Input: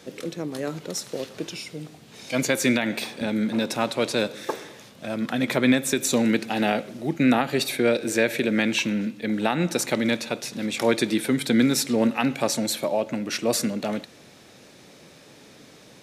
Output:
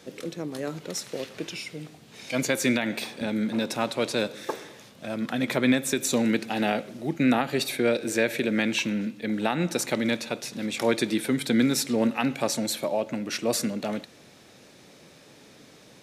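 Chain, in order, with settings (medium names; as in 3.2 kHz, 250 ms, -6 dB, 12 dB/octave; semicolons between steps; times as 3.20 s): 0.85–2.32 s: dynamic bell 2.2 kHz, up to +5 dB, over -53 dBFS, Q 1.3; trim -2.5 dB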